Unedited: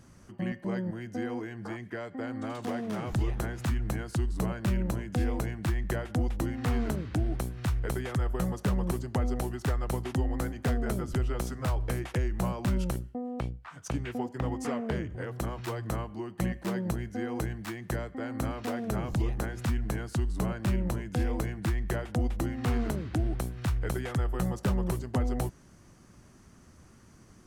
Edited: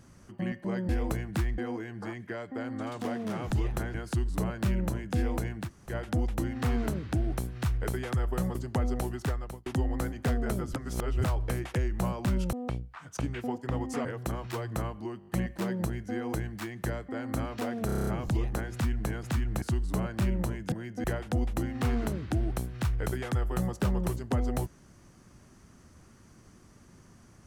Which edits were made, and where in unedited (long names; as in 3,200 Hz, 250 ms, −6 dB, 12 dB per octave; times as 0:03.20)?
0:00.89–0:01.21: swap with 0:21.18–0:21.87
0:03.57–0:03.96: move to 0:20.08
0:05.67–0:05.93: fill with room tone, crossfade 0.10 s
0:08.57–0:08.95: remove
0:09.61–0:10.06: fade out
0:11.16–0:11.64: reverse
0:12.93–0:13.24: remove
0:14.76–0:15.19: remove
0:16.33: stutter 0.02 s, 5 plays
0:18.92: stutter 0.03 s, 8 plays